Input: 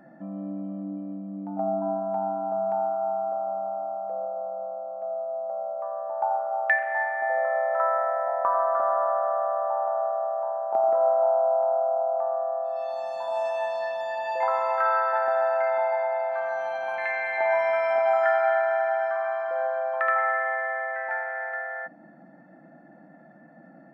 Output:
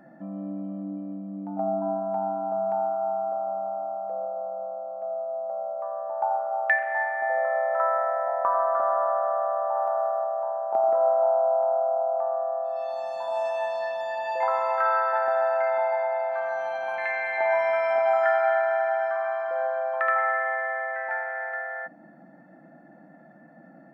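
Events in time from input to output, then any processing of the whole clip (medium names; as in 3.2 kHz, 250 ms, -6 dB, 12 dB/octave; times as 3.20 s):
9.75–10.24 s: treble shelf 2.8 kHz +12 dB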